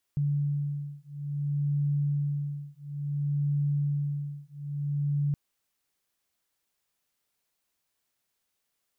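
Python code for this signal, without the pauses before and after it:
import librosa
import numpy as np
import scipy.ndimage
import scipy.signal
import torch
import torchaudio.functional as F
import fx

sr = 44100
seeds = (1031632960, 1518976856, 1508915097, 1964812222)

y = fx.two_tone_beats(sr, length_s=5.17, hz=144.0, beat_hz=0.58, level_db=-29.5)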